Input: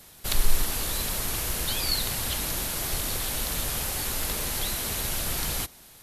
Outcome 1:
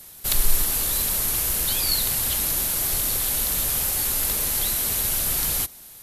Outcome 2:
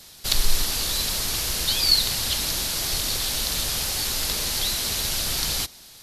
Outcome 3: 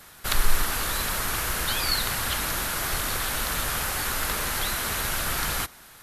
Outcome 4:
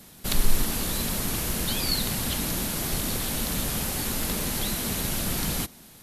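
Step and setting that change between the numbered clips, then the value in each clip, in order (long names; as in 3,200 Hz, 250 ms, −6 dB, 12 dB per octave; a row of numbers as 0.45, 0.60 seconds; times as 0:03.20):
parametric band, centre frequency: 15,000, 4,700, 1,400, 210 Hertz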